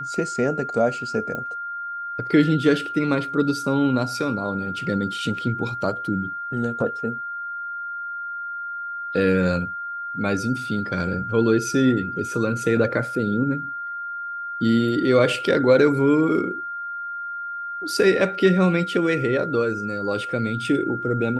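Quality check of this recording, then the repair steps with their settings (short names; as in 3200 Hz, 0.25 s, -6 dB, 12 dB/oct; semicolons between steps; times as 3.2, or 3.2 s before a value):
tone 1400 Hz -28 dBFS
1.35 pop -18 dBFS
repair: de-click; notch 1400 Hz, Q 30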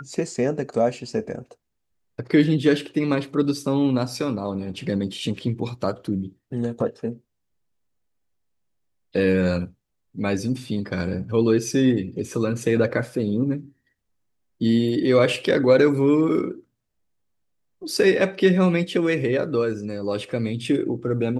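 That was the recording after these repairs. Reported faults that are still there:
none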